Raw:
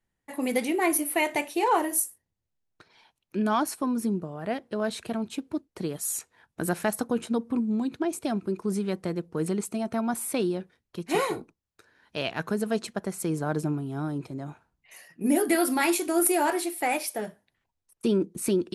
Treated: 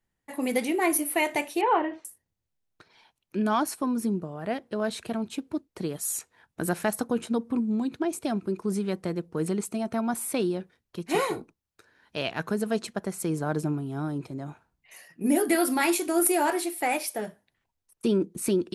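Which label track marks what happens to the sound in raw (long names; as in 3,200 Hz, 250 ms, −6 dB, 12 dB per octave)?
1.610000	2.050000	Butterworth low-pass 3,300 Hz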